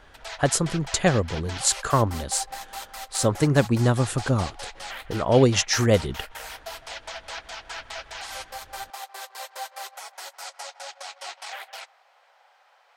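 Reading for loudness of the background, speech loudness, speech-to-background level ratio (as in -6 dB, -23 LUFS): -37.0 LUFS, -23.0 LUFS, 14.0 dB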